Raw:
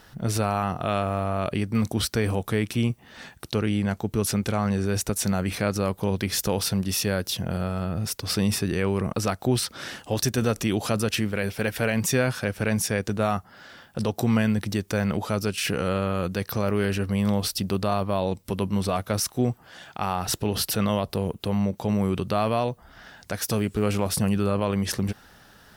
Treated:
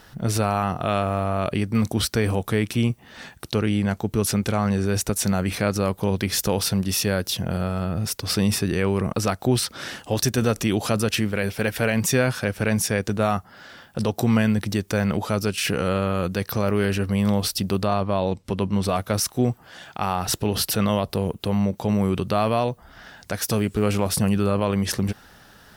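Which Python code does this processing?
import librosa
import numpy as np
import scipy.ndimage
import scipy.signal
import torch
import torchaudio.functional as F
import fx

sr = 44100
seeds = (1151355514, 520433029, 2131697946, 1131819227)

y = fx.air_absorb(x, sr, metres=53.0, at=(17.85, 18.83))
y = y * librosa.db_to_amplitude(2.5)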